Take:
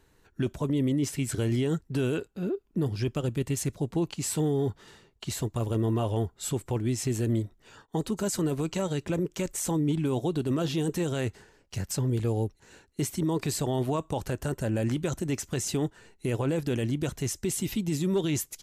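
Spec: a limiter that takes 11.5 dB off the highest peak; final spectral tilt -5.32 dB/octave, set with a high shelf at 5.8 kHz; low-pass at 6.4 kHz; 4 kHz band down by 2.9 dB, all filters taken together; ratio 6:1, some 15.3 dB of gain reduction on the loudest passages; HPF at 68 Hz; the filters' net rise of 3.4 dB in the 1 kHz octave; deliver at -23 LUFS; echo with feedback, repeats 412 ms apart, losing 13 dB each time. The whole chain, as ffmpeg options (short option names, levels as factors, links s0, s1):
-af "highpass=68,lowpass=6400,equalizer=f=1000:t=o:g=4.5,equalizer=f=4000:t=o:g=-6,highshelf=f=5800:g=6.5,acompressor=threshold=0.01:ratio=6,alimiter=level_in=3.98:limit=0.0631:level=0:latency=1,volume=0.251,aecho=1:1:412|824|1236:0.224|0.0493|0.0108,volume=13.3"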